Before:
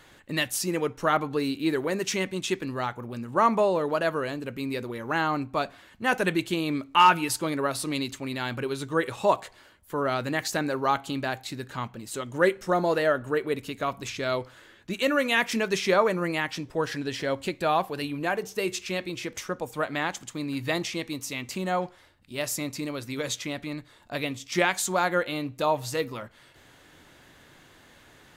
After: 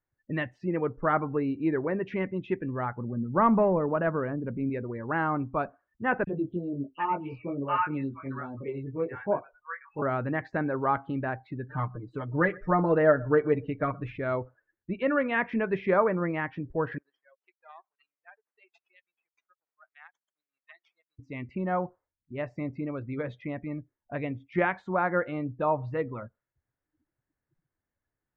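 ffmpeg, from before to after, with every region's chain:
ffmpeg -i in.wav -filter_complex "[0:a]asettb=1/sr,asplit=3[link_01][link_02][link_03];[link_01]atrim=end=2.984[link_04];[link_02]atrim=start=2.98:end=4.7,asetpts=PTS-STARTPTS,afade=type=in:duration=0.004:curve=qsin,afade=type=out:start_time=1.716:duration=0.004:curve=qsin,adynamicsmooth=sensitivity=4:basefreq=1700,aeval=exprs='val(0)+0.00631*sin(2*PI*8300*n/s)':channel_layout=same,equalizer=frequency=190:width=1.7:gain=7[link_05];[link_03]atrim=start=4.696[link_06];[link_04][link_05]acrossfade=duration=0.004:curve1=hsin:curve2=qsin[link_07];[link_07][link_06]acrossfade=duration=0.004:curve1=qsin:curve2=hsin,asettb=1/sr,asplit=3[link_08][link_09][link_10];[link_08]atrim=end=6.244[link_11];[link_09]atrim=start=6.24:end=10.02,asetpts=PTS-STARTPTS,afade=type=in:duration=0.004:curve=qsin,afade=type=out:start_time=3.776:duration=0.004:curve=qsin,acrossover=split=5900[link_12][link_13];[link_13]acompressor=threshold=-57dB:ratio=4:attack=1:release=60[link_14];[link_12][link_14]amix=inputs=2:normalize=0,flanger=delay=19.5:depth=3.3:speed=1.3,acrossover=split=940|3400[link_15][link_16][link_17];[link_15]adelay=30[link_18];[link_16]adelay=730[link_19];[link_18][link_19][link_17]amix=inputs=3:normalize=0,atrim=end_sample=166698[link_20];[link_10]atrim=start=10.016[link_21];[link_11][link_20]acrossfade=duration=0.004:curve1=hsin:curve2=qsin[link_22];[link_22][link_21]acrossfade=duration=0.004:curve1=qsin:curve2=hsin,asettb=1/sr,asplit=3[link_23][link_24][link_25];[link_23]atrim=end=11.684[link_26];[link_24]atrim=start=11.68:end=14.18,asetpts=PTS-STARTPTS,afade=type=in:duration=0.004:curve=qsin,afade=type=out:start_time=2.496:duration=0.004:curve=qsin,aecho=1:1:6.6:0.86,atrim=end_sample=110250,aecho=1:1:122:0.0708,atrim=end_sample=110250[link_27];[link_25]atrim=start=14.176[link_28];[link_26][link_27]acrossfade=duration=0.004:curve1=hsin:curve2=qsin[link_29];[link_29][link_28]acrossfade=duration=0.004:curve1=qsin:curve2=hsin,asettb=1/sr,asplit=3[link_30][link_31][link_32];[link_30]atrim=end=16.984[link_33];[link_31]atrim=start=16.98:end=21.19,asetpts=PTS-STARTPTS,afade=type=in:duration=0.004:curve=qsin,afade=type=out:start_time=4.206:duration=0.004:curve=qsin,aderivative,acrusher=bits=6:dc=4:mix=0:aa=0.000001,highpass=410[link_34];[link_32]atrim=start=21.186[link_35];[link_33][link_34]acrossfade=duration=0.004:curve1=hsin:curve2=qsin[link_36];[link_36][link_35]acrossfade=duration=0.004:curve1=qsin:curve2=hsin,afftdn=noise_reduction=34:noise_floor=-39,lowpass=frequency=2000:width=0.5412,lowpass=frequency=2000:width=1.3066,lowshelf=frequency=99:gain=12,volume=-2dB" out.wav

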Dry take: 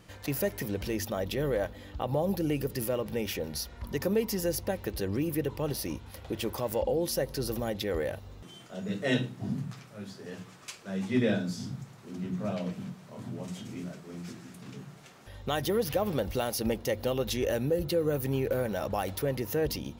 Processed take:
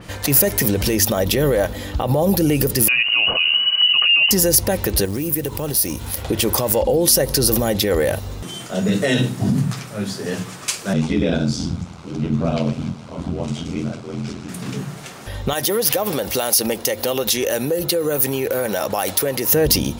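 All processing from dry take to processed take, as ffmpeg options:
ffmpeg -i in.wav -filter_complex "[0:a]asettb=1/sr,asplit=3[link_01][link_02][link_03];[link_01]atrim=end=2.884[link_04];[link_02]atrim=start=2.88:end=4.31,asetpts=PTS-STARTPTS,afade=type=in:duration=0.004:curve=qsin,afade=type=out:start_time=1.426:duration=0.004:curve=qsin,asubboost=boost=11.5:cutoff=230,lowpass=frequency=2600:width_type=q:width=0.5098,lowpass=frequency=2600:width_type=q:width=0.6013,lowpass=frequency=2600:width_type=q:width=0.9,lowpass=frequency=2600:width_type=q:width=2.563,afreqshift=-3000[link_05];[link_03]atrim=start=4.306[link_06];[link_04][link_05]acrossfade=duration=0.004:curve1=hsin:curve2=qsin[link_07];[link_07][link_06]acrossfade=duration=0.004:curve1=qsin:curve2=hsin,asettb=1/sr,asplit=3[link_08][link_09][link_10];[link_08]atrim=end=5.054[link_11];[link_09]atrim=start=5.05:end=6.22,asetpts=PTS-STARTPTS,afade=type=in:duration=0.004:curve=qsin,afade=type=out:start_time=1.166:duration=0.004:curve=qsin,highshelf=frequency=9300:gain=10.5,acrusher=bits=6:mode=log:mix=0:aa=0.000001,acompressor=threshold=-39dB:ratio=4:attack=3.2:release=140:knee=1:detection=peak[link_12];[link_10]atrim=start=6.216[link_13];[link_11][link_12]acrossfade=duration=0.004:curve1=hsin:curve2=qsin[link_14];[link_14][link_13]acrossfade=duration=0.004:curve1=qsin:curve2=hsin,asettb=1/sr,asplit=3[link_15][link_16][link_17];[link_15]atrim=end=10.934[link_18];[link_16]atrim=start=10.93:end=14.49,asetpts=PTS-STARTPTS,afade=type=in:duration=0.004:curve=qsin,afade=type=out:start_time=3.556:duration=0.004:curve=qsin,lowpass=5400,equalizer=frequency=1800:width=7.9:gain=-12.5,aeval=exprs='val(0)*sin(2*PI*42*n/s)':channel_layout=same[link_19];[link_17]atrim=start=14.486[link_20];[link_18][link_19]acrossfade=duration=0.004:curve1=hsin:curve2=qsin[link_21];[link_21][link_20]acrossfade=duration=0.004:curve1=qsin:curve2=hsin,asettb=1/sr,asplit=3[link_22][link_23][link_24];[link_22]atrim=end=15.534[link_25];[link_23]atrim=start=15.53:end=19.52,asetpts=PTS-STARTPTS,afade=type=in:duration=0.004:curve=qsin,afade=type=out:start_time=3.986:duration=0.004:curve=qsin,highpass=frequency=440:poles=1,acompressor=threshold=-35dB:ratio=3:attack=3.2:release=140:knee=1:detection=peak[link_26];[link_24]atrim=start=19.516[link_27];[link_25][link_26]acrossfade=duration=0.004:curve1=hsin:curve2=qsin[link_28];[link_28][link_27]acrossfade=duration=0.004:curve1=qsin:curve2=hsin,equalizer=frequency=9200:width=5.7:gain=4.5,alimiter=level_in=25.5dB:limit=-1dB:release=50:level=0:latency=1,adynamicequalizer=threshold=0.0316:dfrequency=4600:dqfactor=0.7:tfrequency=4600:tqfactor=0.7:attack=5:release=100:ratio=0.375:range=4:mode=boostabove:tftype=highshelf,volume=-8.5dB" out.wav

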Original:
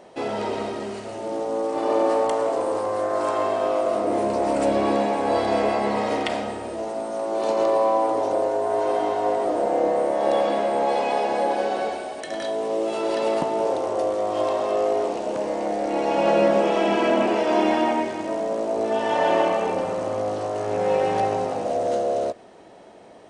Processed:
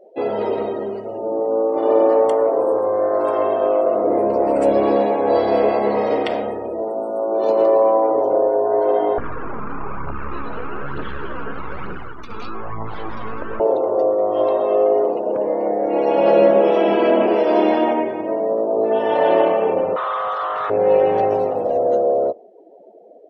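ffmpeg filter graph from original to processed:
ffmpeg -i in.wav -filter_complex "[0:a]asettb=1/sr,asplit=3[link_01][link_02][link_03];[link_01]atrim=end=9.184[link_04];[link_02]atrim=start=9.18:end=13.6,asetpts=PTS-STARTPTS,afade=type=in:duration=0.004:curve=qsin,afade=type=out:start_time=4.416:duration=0.004:curve=qsin,acompressor=threshold=-25dB:ratio=3:attack=3.2:release=140:knee=1:detection=peak,aeval=exprs='abs(val(0))':channel_layout=same,aphaser=in_gain=1:out_gain=1:delay=4.8:decay=0.4:speed=1.1:type=triangular[link_05];[link_03]atrim=start=13.596[link_06];[link_04][link_05]acrossfade=duration=0.004:curve1=hsin:curve2=qsin[link_07];[link_07][link_06]acrossfade=duration=0.004:curve1=qsin:curve2=hsin,asettb=1/sr,asplit=3[link_08][link_09][link_10];[link_08]atrim=end=19.964[link_11];[link_09]atrim=start=19.96:end=20.7,asetpts=PTS-STARTPTS,afade=type=in:duration=0.004:curve=qsin,afade=type=out:start_time=0.736:duration=0.004:curve=qsin,highpass=frequency=1200:width_type=q:width=5.6,asplit=2[link_12][link_13];[link_13]highpass=frequency=720:poles=1,volume=15dB,asoftclip=type=tanh:threshold=-17dB[link_14];[link_12][link_14]amix=inputs=2:normalize=0,lowpass=frequency=3700:poles=1,volume=-6dB[link_15];[link_10]atrim=start=20.696[link_16];[link_11][link_15]acrossfade=duration=0.004:curve1=hsin:curve2=qsin[link_17];[link_17][link_16]acrossfade=duration=0.004:curve1=qsin:curve2=hsin,asettb=1/sr,asplit=3[link_18][link_19][link_20];[link_18]atrim=end=21.304[link_21];[link_19]atrim=start=21.3:end=21.78,asetpts=PTS-STARTPTS,afade=type=in:duration=0.004:curve=qsin,afade=type=out:start_time=0.476:duration=0.004:curve=qsin,asubboost=boost=6.5:cutoff=140,acrusher=bits=4:mode=log:mix=0:aa=0.000001[link_22];[link_20]atrim=start=21.776[link_23];[link_21][link_22]acrossfade=duration=0.004:curve1=hsin:curve2=qsin[link_24];[link_24][link_23]acrossfade=duration=0.004:curve1=qsin:curve2=hsin,afftdn=noise_reduction=29:noise_floor=-39,equalizer=frequency=460:width=1.4:gain=8.5" out.wav

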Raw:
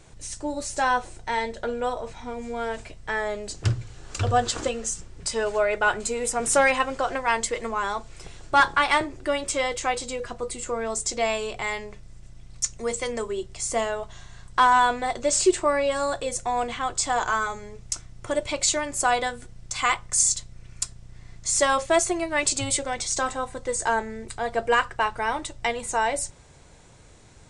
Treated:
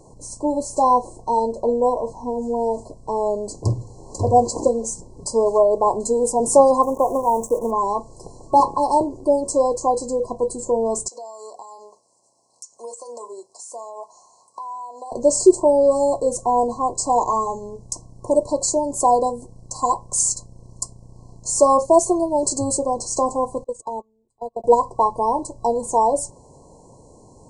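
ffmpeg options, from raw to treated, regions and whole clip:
ffmpeg -i in.wav -filter_complex "[0:a]asettb=1/sr,asplit=3[link_01][link_02][link_03];[link_01]atrim=end=6.834[link_04];[link_02]atrim=start=6.83:end=7.71,asetpts=PTS-STARTPTS,afade=type=in:duration=0.004:curve=qsin,afade=type=out:start_time=0.876:duration=0.004:curve=qsin,highshelf=frequency=2800:gain=-8.5,acrusher=bits=7:dc=4:mix=0:aa=0.000001,asuperstop=centerf=3900:order=8:qfactor=1.2[link_05];[link_03]atrim=start=7.706[link_06];[link_04][link_05]acrossfade=duration=0.004:curve1=hsin:curve2=qsin[link_07];[link_07][link_06]acrossfade=duration=0.004:curve1=qsin:curve2=hsin,asettb=1/sr,asplit=3[link_08][link_09][link_10];[link_08]atrim=end=11.084[link_11];[link_09]atrim=start=11.08:end=15.12,asetpts=PTS-STARTPTS,afade=type=in:duration=0.004:curve=qsin,afade=type=out:start_time=4.036:duration=0.004:curve=qsin,highpass=940,acompressor=threshold=-35dB:ratio=10:attack=3.2:release=140:knee=1:detection=peak[link_12];[link_10]atrim=start=15.116[link_13];[link_11][link_12]acrossfade=duration=0.004:curve1=hsin:curve2=qsin[link_14];[link_14][link_13]acrossfade=duration=0.004:curve1=qsin:curve2=hsin,asettb=1/sr,asplit=3[link_15][link_16][link_17];[link_15]atrim=end=23.644[link_18];[link_16]atrim=start=23.64:end=24.64,asetpts=PTS-STARTPTS,afade=type=in:duration=0.004:curve=qsin,afade=type=out:start_time=0.996:duration=0.004:curve=qsin,agate=range=-37dB:threshold=-26dB:ratio=16:release=100:detection=peak,acompressor=threshold=-31dB:ratio=6:attack=3.2:release=140:knee=1:detection=peak[link_19];[link_17]atrim=start=24.636[link_20];[link_18][link_19]acrossfade=duration=0.004:curve1=hsin:curve2=qsin[link_21];[link_21][link_20]acrossfade=duration=0.004:curve1=qsin:curve2=hsin,afftfilt=real='re*(1-between(b*sr/4096,1100,4000))':imag='im*(1-between(b*sr/4096,1100,4000))':win_size=4096:overlap=0.75,equalizer=frequency=125:width_type=o:width=1:gain=4,equalizer=frequency=250:width_type=o:width=1:gain=9,equalizer=frequency=500:width_type=o:width=1:gain=9,equalizer=frequency=1000:width_type=o:width=1:gain=6,equalizer=frequency=2000:width_type=o:width=1:gain=12,equalizer=frequency=4000:width_type=o:width=1:gain=-7,equalizer=frequency=8000:width_type=o:width=1:gain=5,volume=-2.5dB" out.wav

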